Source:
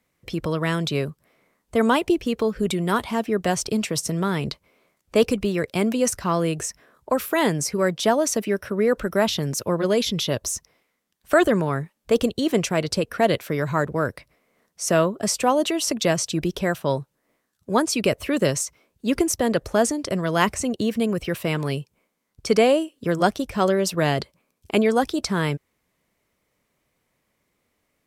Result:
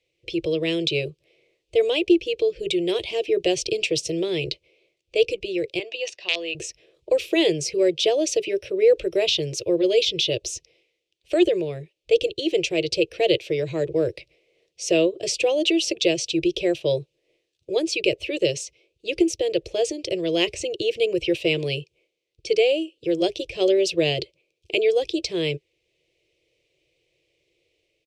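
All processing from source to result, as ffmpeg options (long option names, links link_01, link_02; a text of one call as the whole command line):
ffmpeg -i in.wav -filter_complex "[0:a]asettb=1/sr,asplit=3[link_01][link_02][link_03];[link_01]atrim=end=5.794[link_04];[link_02]atrim=start=5.79:end=6.55,asetpts=PTS-STARTPTS,afade=type=in:duration=0.004:curve=qsin,afade=type=out:start_time=0.756:duration=0.004:curve=qsin,aecho=1:1:1.1:0.42,atrim=end_sample=33516,aeval=exprs='(mod(3.35*val(0)+1,2)-1)/3.35':channel_layout=same,highpass=640,lowpass=4100[link_05];[link_03]atrim=start=6.546[link_06];[link_04][link_05]acrossfade=duration=0.004:curve1=hsin:curve2=qsin[link_07];[link_07][link_06]acrossfade=duration=0.004:curve1=qsin:curve2=hsin,firequalizer=gain_entry='entry(150,0);entry(230,-29);entry(330,11);entry(480,10);entry(890,-14);entry(1400,-18);entry(2500,13);entry(14000,-20)':delay=0.05:min_phase=1,dynaudnorm=framelen=140:gausssize=7:maxgain=4dB,bandreject=frequency=410:width=12,volume=-6dB" out.wav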